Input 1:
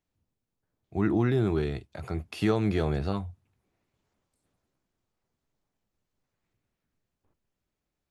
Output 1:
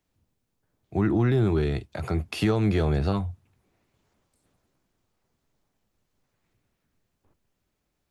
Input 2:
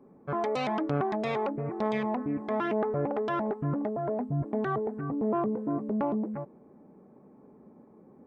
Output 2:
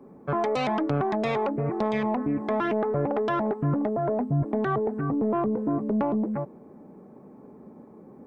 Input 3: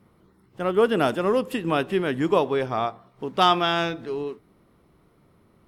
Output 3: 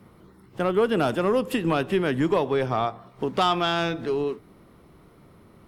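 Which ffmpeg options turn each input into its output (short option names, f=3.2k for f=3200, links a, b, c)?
-filter_complex "[0:a]acrossover=split=120[a][b];[b]acompressor=threshold=-31dB:ratio=2[c];[a][c]amix=inputs=2:normalize=0,aeval=exprs='0.531*sin(PI/2*3.16*val(0)/0.531)':c=same,aeval=exprs='0.562*(cos(1*acos(clip(val(0)/0.562,-1,1)))-cos(1*PI/2))+0.00708*(cos(4*acos(clip(val(0)/0.562,-1,1)))-cos(4*PI/2))':c=same,volume=-7dB"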